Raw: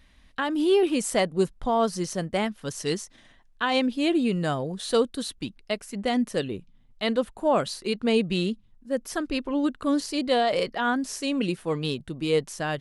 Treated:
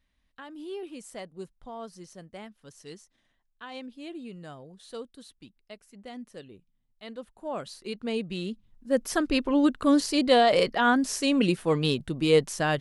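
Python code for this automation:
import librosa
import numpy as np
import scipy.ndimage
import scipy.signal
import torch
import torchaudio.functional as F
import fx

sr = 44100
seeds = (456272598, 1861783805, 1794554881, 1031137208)

y = fx.gain(x, sr, db=fx.line((7.04, -17.0), (7.89, -8.0), (8.41, -8.0), (8.95, 3.0)))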